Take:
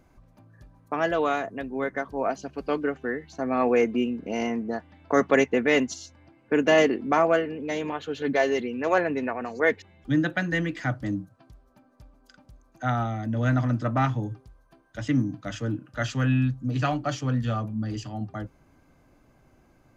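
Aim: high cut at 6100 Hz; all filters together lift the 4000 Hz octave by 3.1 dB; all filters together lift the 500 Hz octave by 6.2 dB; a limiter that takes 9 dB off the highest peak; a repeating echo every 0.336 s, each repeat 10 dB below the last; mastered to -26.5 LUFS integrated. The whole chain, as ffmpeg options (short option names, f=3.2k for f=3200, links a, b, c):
-af "lowpass=6.1k,equalizer=f=500:t=o:g=7.5,equalizer=f=4k:t=o:g=5,alimiter=limit=-11.5dB:level=0:latency=1,aecho=1:1:336|672|1008|1344:0.316|0.101|0.0324|0.0104,volume=-2.5dB"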